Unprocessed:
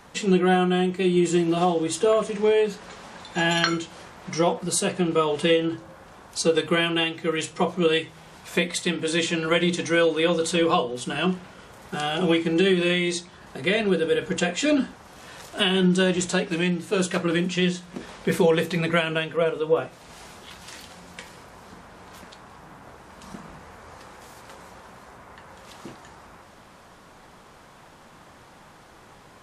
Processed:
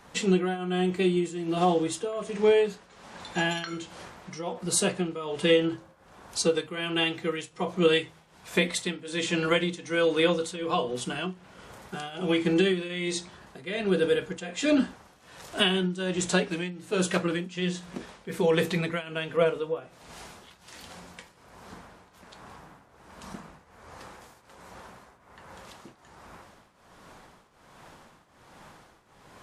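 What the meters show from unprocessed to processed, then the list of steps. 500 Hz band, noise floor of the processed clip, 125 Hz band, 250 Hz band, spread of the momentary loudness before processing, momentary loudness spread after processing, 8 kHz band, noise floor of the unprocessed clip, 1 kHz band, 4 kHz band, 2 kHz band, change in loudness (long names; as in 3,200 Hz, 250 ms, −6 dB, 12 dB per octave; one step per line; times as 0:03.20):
−4.0 dB, −59 dBFS, −5.0 dB, −4.5 dB, 20 LU, 20 LU, −3.0 dB, −50 dBFS, −5.5 dB, −4.0 dB, −5.0 dB, −4.0 dB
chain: shaped tremolo triangle 1.3 Hz, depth 85%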